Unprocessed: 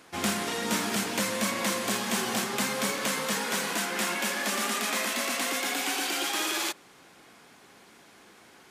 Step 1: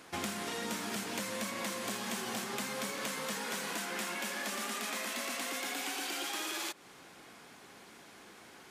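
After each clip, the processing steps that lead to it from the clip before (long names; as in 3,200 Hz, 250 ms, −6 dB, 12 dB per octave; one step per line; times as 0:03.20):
downward compressor 6 to 1, threshold −35 dBFS, peak gain reduction 11.5 dB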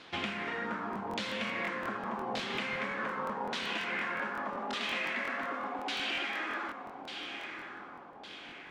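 feedback delay with all-pass diffusion 1,036 ms, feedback 42%, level −7.5 dB
auto-filter low-pass saw down 0.85 Hz 810–3,900 Hz
regular buffer underruns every 0.18 s, samples 1,024, repeat, from 0:00.91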